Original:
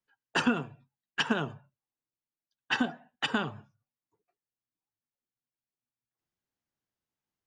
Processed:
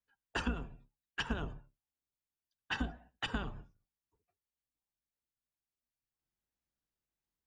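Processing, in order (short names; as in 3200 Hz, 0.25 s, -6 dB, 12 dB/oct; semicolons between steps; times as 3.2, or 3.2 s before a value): octaver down 2 oct, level +4 dB; compressor 2.5:1, threshold -29 dBFS, peak gain reduction 8.5 dB; gain -5 dB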